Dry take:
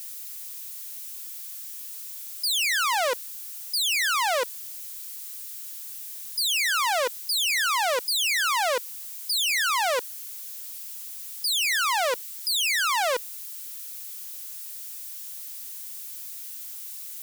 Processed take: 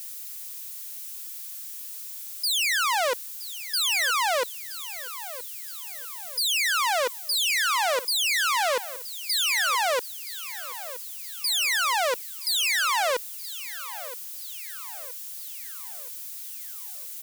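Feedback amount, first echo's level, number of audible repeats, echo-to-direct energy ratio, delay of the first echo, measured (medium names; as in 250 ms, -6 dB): 48%, -15.5 dB, 4, -14.5 dB, 972 ms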